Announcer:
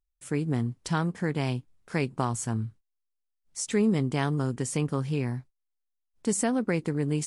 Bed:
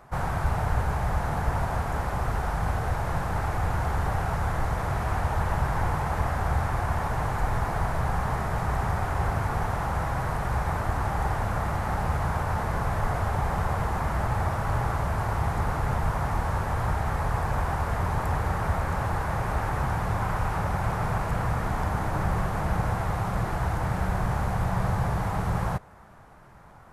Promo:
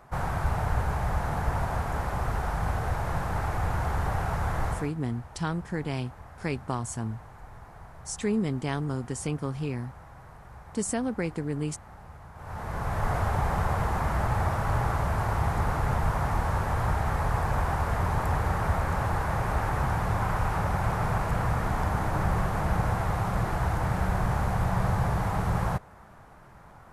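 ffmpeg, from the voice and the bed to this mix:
-filter_complex "[0:a]adelay=4500,volume=-3dB[a];[1:a]volume=18.5dB,afade=t=out:st=4.69:d=0.23:silence=0.11885,afade=t=in:st=12.35:d=0.79:silence=0.1[b];[a][b]amix=inputs=2:normalize=0"

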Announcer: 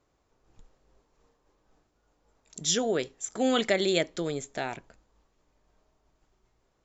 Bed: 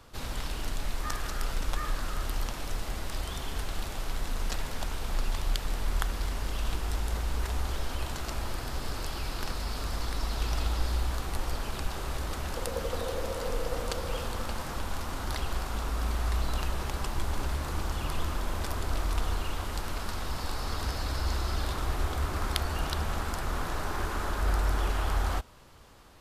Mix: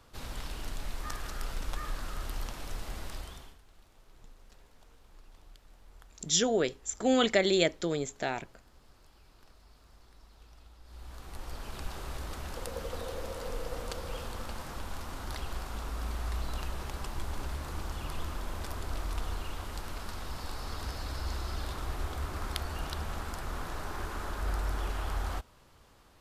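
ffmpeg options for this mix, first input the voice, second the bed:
-filter_complex "[0:a]adelay=3650,volume=0dB[a];[1:a]volume=15.5dB,afade=t=out:st=3.06:d=0.52:silence=0.0891251,afade=t=in:st=10.84:d=1.05:silence=0.0944061[b];[a][b]amix=inputs=2:normalize=0"

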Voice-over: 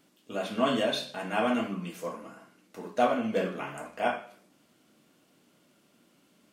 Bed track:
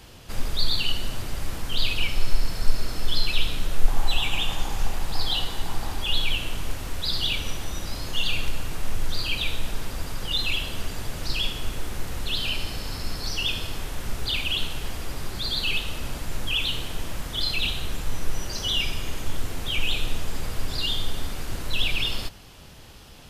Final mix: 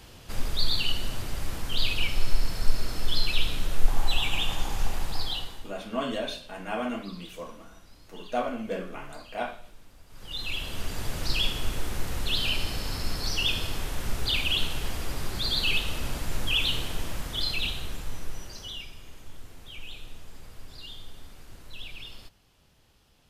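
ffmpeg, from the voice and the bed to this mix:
-filter_complex "[0:a]adelay=5350,volume=-4dB[a];[1:a]volume=20.5dB,afade=t=out:st=5.01:d=0.73:silence=0.0944061,afade=t=in:st=10.08:d=1.02:silence=0.0749894,afade=t=out:st=16.75:d=2.13:silence=0.149624[b];[a][b]amix=inputs=2:normalize=0"

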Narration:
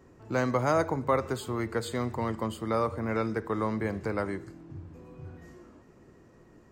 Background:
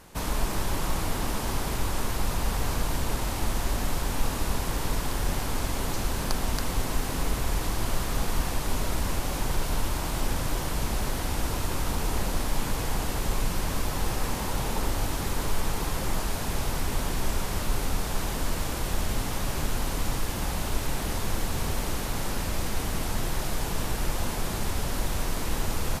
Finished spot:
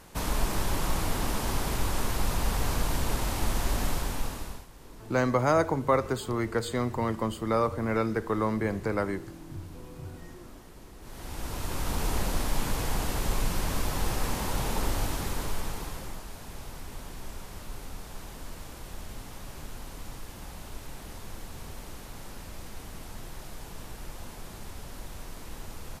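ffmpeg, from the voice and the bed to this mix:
-filter_complex "[0:a]adelay=4800,volume=2dB[a];[1:a]volume=20.5dB,afade=t=out:st=3.86:d=0.81:silence=0.0841395,afade=t=in:st=11:d=1.04:silence=0.0891251,afade=t=out:st=14.95:d=1.26:silence=0.251189[b];[a][b]amix=inputs=2:normalize=0"

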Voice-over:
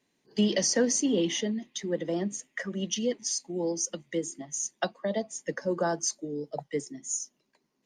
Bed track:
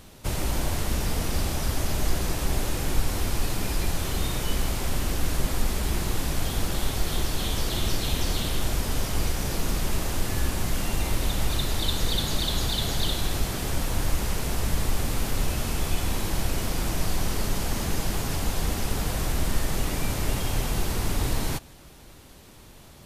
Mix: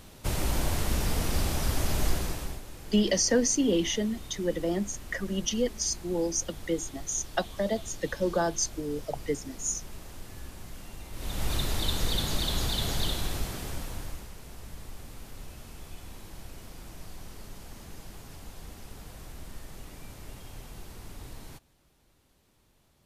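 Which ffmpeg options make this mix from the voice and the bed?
-filter_complex "[0:a]adelay=2550,volume=1dB[a];[1:a]volume=12.5dB,afade=t=out:st=2.05:d=0.56:silence=0.16788,afade=t=in:st=11.12:d=0.42:silence=0.199526,afade=t=out:st=12.97:d=1.33:silence=0.177828[b];[a][b]amix=inputs=2:normalize=0"

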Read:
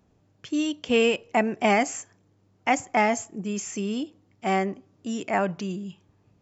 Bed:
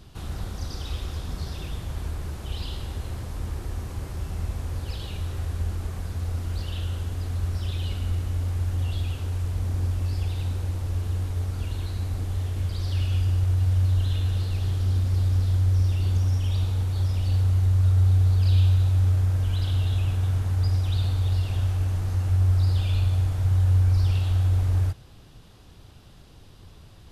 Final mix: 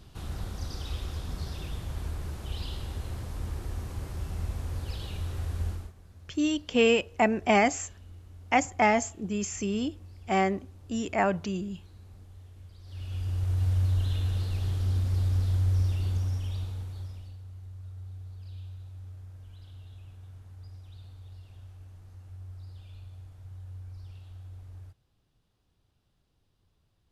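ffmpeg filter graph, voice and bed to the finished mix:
-filter_complex "[0:a]adelay=5850,volume=-1dB[a];[1:a]volume=14dB,afade=t=out:st=5.68:d=0.25:silence=0.125893,afade=t=in:st=12.84:d=0.81:silence=0.133352,afade=t=out:st=15.78:d=1.58:silence=0.105925[b];[a][b]amix=inputs=2:normalize=0"

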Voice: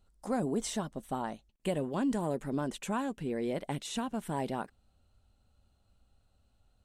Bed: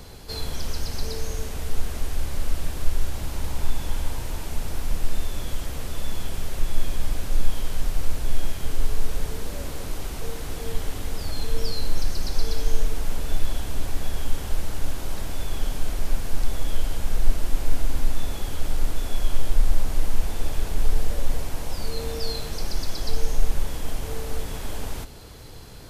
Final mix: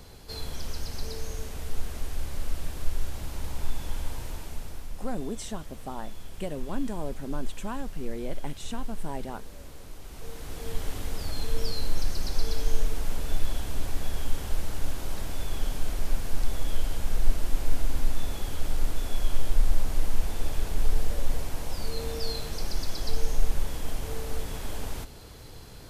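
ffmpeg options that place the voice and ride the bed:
-filter_complex "[0:a]adelay=4750,volume=-2.5dB[a];[1:a]volume=4.5dB,afade=t=out:st=4.26:d=0.66:silence=0.421697,afade=t=in:st=10.02:d=0.88:silence=0.316228[b];[a][b]amix=inputs=2:normalize=0"

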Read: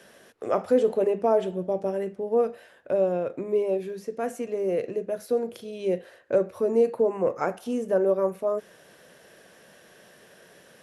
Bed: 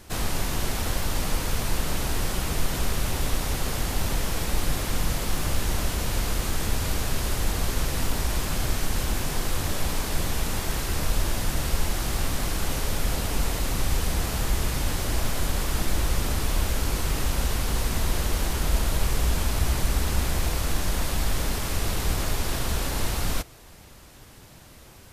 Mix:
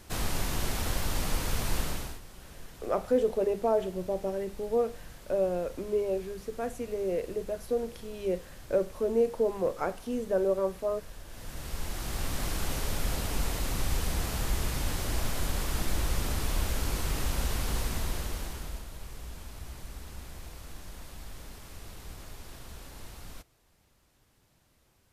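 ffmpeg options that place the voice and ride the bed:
-filter_complex "[0:a]adelay=2400,volume=-4.5dB[a];[1:a]volume=13dB,afade=t=out:st=1.8:d=0.4:silence=0.125893,afade=t=in:st=11.27:d=1.2:silence=0.141254,afade=t=out:st=17.74:d=1.12:silence=0.199526[b];[a][b]amix=inputs=2:normalize=0"

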